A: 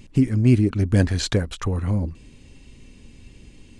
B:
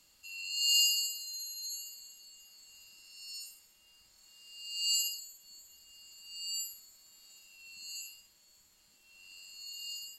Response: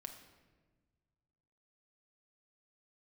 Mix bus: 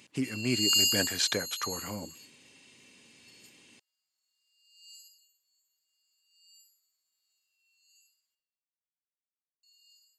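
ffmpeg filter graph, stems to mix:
-filter_complex "[0:a]highpass=f=100:w=0.5412,highpass=f=100:w=1.3066,volume=0dB,asplit=2[a][b];[1:a]volume=2dB,asplit=3[c][d][e];[c]atrim=end=8.35,asetpts=PTS-STARTPTS,afade=t=out:st=8.346:d=0.004:c=hsin[f];[d]atrim=start=8.35:end=9.63,asetpts=PTS-STARTPTS,volume=0[g];[e]atrim=start=9.63,asetpts=PTS-STARTPTS,afade=t=in:d=0.004:c=hsin[h];[f][g][h]concat=n=3:v=0:a=1,asplit=2[i][j];[j]volume=-21dB[k];[b]apad=whole_len=449297[l];[i][l]sidechaingate=range=-33dB:threshold=-46dB:ratio=16:detection=peak[m];[2:a]atrim=start_sample=2205[n];[k][n]afir=irnorm=-1:irlink=0[o];[a][m][o]amix=inputs=3:normalize=0,highpass=f=1.1k:p=1"

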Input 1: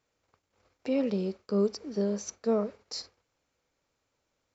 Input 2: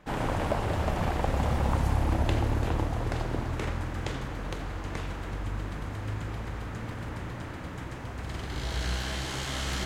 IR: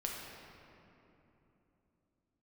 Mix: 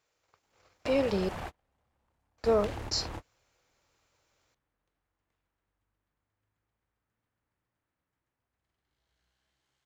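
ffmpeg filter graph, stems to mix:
-filter_complex "[0:a]equalizer=f=240:t=o:w=0.31:g=-9.5,volume=2dB,asplit=3[a][b][c];[a]atrim=end=1.29,asetpts=PTS-STARTPTS,afade=t=out:st=1.286:d=0.004:c=hsin[d];[b]atrim=start=1.29:end=2.38,asetpts=PTS-STARTPTS,volume=0[e];[c]atrim=start=2.38,asetpts=PTS-STARTPTS,afade=t=in:d=0.004:c=hsin[f];[d][e][f]concat=n=3:v=0:a=1,asplit=2[g][h];[1:a]asoftclip=type=hard:threshold=-23dB,adelay=350,volume=-10dB[i];[h]apad=whole_len=450259[j];[i][j]sidechaingate=range=-39dB:threshold=-57dB:ratio=16:detection=peak[k];[g][k]amix=inputs=2:normalize=0,lowshelf=f=480:g=-7,dynaudnorm=f=130:g=7:m=4.5dB"

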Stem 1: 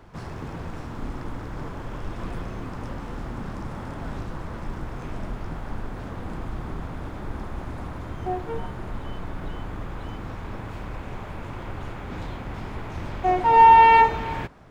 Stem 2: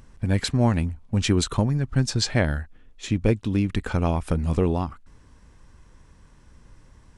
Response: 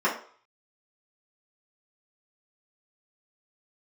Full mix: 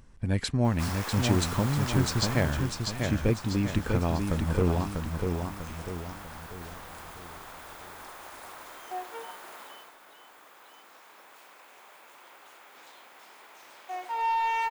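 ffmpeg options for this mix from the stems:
-filter_complex "[0:a]highpass=500,aemphasis=mode=production:type=riaa,acontrast=85,adelay=650,volume=-3dB,afade=t=out:st=2.27:d=0.52:silence=0.398107,afade=t=out:st=9.61:d=0.34:silence=0.375837[a];[1:a]volume=-5dB,asplit=2[b][c];[c]volume=-4.5dB,aecho=0:1:645|1290|1935|2580|3225|3870:1|0.44|0.194|0.0852|0.0375|0.0165[d];[a][b][d]amix=inputs=3:normalize=0"

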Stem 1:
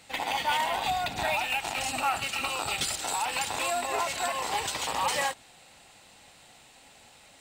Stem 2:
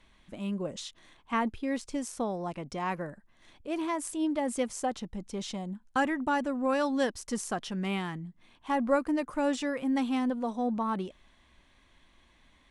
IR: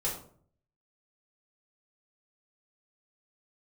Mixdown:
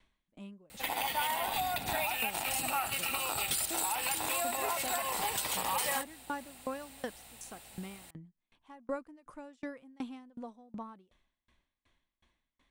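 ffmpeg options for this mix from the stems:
-filter_complex "[0:a]aexciter=amount=6.4:drive=2.5:freq=9.2k,aeval=exprs='val(0)+0.000708*(sin(2*PI*60*n/s)+sin(2*PI*2*60*n/s)/2+sin(2*PI*3*60*n/s)/3+sin(2*PI*4*60*n/s)/4+sin(2*PI*5*60*n/s)/5)':c=same,adelay=700,volume=-1.5dB[a];[1:a]aeval=exprs='val(0)*pow(10,-31*if(lt(mod(2.7*n/s,1),2*abs(2.7)/1000),1-mod(2.7*n/s,1)/(2*abs(2.7)/1000),(mod(2.7*n/s,1)-2*abs(2.7)/1000)/(1-2*abs(2.7)/1000))/20)':c=same,volume=-5.5dB[b];[a][b]amix=inputs=2:normalize=0,acompressor=threshold=-32dB:ratio=2"

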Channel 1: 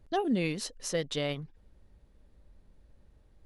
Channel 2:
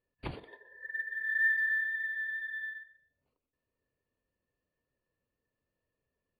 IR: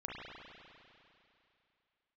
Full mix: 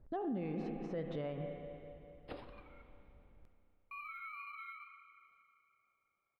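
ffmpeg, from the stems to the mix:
-filter_complex "[0:a]deesser=0.85,lowpass=1.3k,volume=-4.5dB,asplit=2[a][b];[b]volume=-5dB[c];[1:a]acrossover=split=500|3000[d][e][f];[e]acompressor=threshold=-43dB:ratio=2[g];[d][g][f]amix=inputs=3:normalize=0,aeval=exprs='val(0)*sin(2*PI*520*n/s+520*0.25/2.1*sin(2*PI*2.1*n/s))':c=same,adelay=2050,volume=-8dB,asplit=3[h][i][j];[h]atrim=end=2.82,asetpts=PTS-STARTPTS,afade=t=out:st=2.816:d=0.004:c=hsin[k];[i]atrim=start=2.82:end=3.91,asetpts=PTS-STARTPTS,volume=0[l];[j]atrim=start=3.91,asetpts=PTS-STARTPTS,afade=t=in:d=0.004:c=hsin[m];[k][l][m]concat=n=3:v=0:a=1,asplit=2[n][o];[o]volume=-4.5dB[p];[2:a]atrim=start_sample=2205[q];[c][p]amix=inputs=2:normalize=0[r];[r][q]afir=irnorm=-1:irlink=0[s];[a][n][s]amix=inputs=3:normalize=0,alimiter=level_in=7.5dB:limit=-24dB:level=0:latency=1:release=76,volume=-7.5dB"

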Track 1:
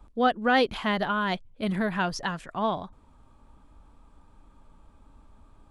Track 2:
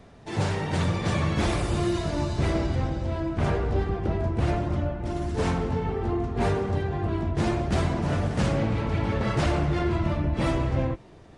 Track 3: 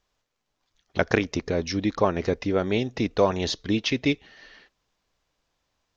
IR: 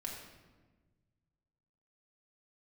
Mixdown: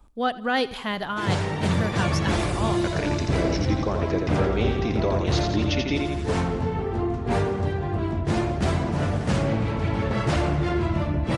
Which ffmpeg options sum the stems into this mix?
-filter_complex "[0:a]highshelf=f=4.3k:g=8,volume=-3dB,asplit=3[a][b][c];[b]volume=-20.5dB[d];[c]volume=-18.5dB[e];[1:a]highpass=51,adelay=900,volume=1.5dB[f];[2:a]alimiter=limit=-12.5dB:level=0:latency=1:release=130,adelay=1850,volume=-3dB,asplit=2[g][h];[h]volume=-4dB[i];[3:a]atrim=start_sample=2205[j];[d][j]afir=irnorm=-1:irlink=0[k];[e][i]amix=inputs=2:normalize=0,aecho=0:1:85|170|255|340|425|510|595|680:1|0.53|0.281|0.149|0.0789|0.0418|0.0222|0.0117[l];[a][f][g][k][l]amix=inputs=5:normalize=0"

